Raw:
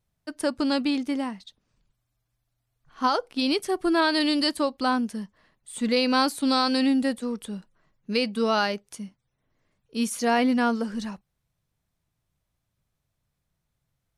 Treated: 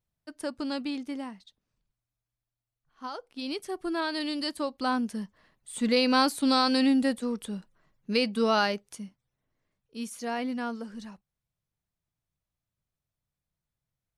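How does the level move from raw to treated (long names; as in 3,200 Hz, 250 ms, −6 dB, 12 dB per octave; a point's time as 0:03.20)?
0:01.34 −8 dB
0:03.03 −15.5 dB
0:03.62 −8.5 dB
0:04.38 −8.5 dB
0:05.22 −1 dB
0:08.68 −1 dB
0:10.00 −10 dB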